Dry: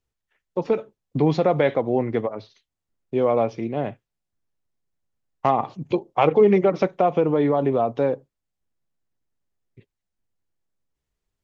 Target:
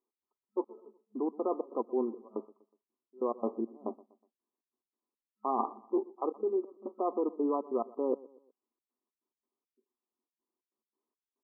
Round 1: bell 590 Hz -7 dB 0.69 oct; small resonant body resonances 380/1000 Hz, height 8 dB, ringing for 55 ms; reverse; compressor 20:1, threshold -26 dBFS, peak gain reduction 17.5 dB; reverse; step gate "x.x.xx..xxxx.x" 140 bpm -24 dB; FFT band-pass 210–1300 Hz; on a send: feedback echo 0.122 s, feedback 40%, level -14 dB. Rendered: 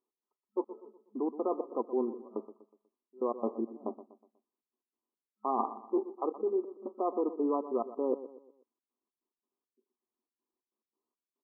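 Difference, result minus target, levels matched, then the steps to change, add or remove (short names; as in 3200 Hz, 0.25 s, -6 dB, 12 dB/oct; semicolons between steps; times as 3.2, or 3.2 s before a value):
echo-to-direct +7 dB
change: feedback echo 0.122 s, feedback 40%, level -21 dB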